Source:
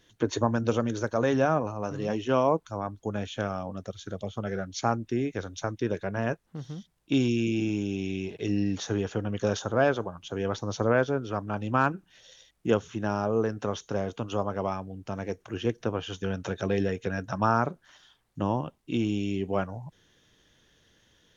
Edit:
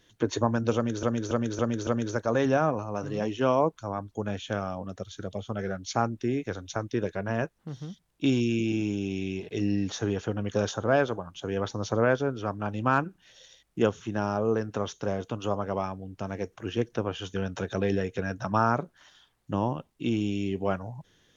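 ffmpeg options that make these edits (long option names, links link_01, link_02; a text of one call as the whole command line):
ffmpeg -i in.wav -filter_complex "[0:a]asplit=5[link_01][link_02][link_03][link_04][link_05];[link_01]atrim=end=1.032[link_06];[link_02]atrim=start=0.748:end=1.032[link_07];[link_03]atrim=start=0.748:end=1.032[link_08];[link_04]atrim=start=0.748:end=1.032[link_09];[link_05]atrim=start=0.748[link_10];[link_06][link_07]acrossfade=duration=0.004:curve1=hsin:curve2=hsin[link_11];[link_11][link_08]acrossfade=duration=0.004:curve1=hsin:curve2=hsin[link_12];[link_12][link_09]acrossfade=duration=0.004:curve1=hsin:curve2=hsin[link_13];[link_13][link_10]acrossfade=duration=0.004:curve1=hsin:curve2=hsin" out.wav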